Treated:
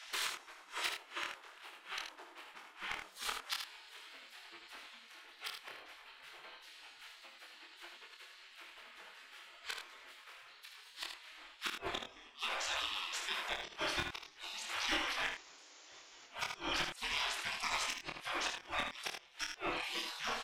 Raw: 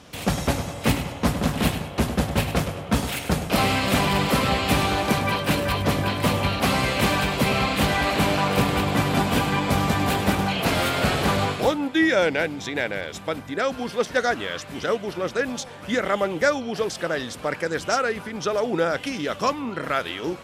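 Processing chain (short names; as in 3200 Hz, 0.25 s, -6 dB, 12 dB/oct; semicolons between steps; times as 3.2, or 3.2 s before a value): RIAA curve playback; spectral gate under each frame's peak -30 dB weak; dynamic EQ 330 Hz, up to +4 dB, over -59 dBFS, Q 2.6; reverse; upward compressor, threshold -51 dBFS; reverse; painted sound noise, 15.26–16.27, 270–7300 Hz -40 dBFS; flipped gate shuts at -30 dBFS, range -29 dB; overloaded stage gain 35.5 dB; doubler 26 ms -4 dB; on a send: early reflections 56 ms -13.5 dB, 78 ms -6.5 dB; on the sum: gain +7.5 dB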